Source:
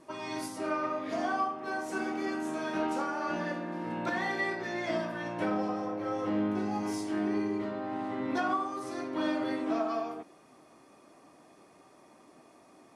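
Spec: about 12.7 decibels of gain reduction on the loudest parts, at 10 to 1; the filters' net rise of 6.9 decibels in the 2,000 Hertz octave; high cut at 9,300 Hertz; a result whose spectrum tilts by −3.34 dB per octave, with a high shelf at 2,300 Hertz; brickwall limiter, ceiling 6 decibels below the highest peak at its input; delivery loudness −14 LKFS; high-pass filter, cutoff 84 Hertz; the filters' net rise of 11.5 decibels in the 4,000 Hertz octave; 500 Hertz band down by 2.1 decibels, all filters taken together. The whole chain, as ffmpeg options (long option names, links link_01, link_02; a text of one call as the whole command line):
ffmpeg -i in.wav -af "highpass=84,lowpass=9300,equalizer=frequency=500:width_type=o:gain=-4,equalizer=frequency=2000:width_type=o:gain=4,highshelf=frequency=2300:gain=7,equalizer=frequency=4000:width_type=o:gain=7,acompressor=threshold=-34dB:ratio=10,volume=25dB,alimiter=limit=-5.5dB:level=0:latency=1" out.wav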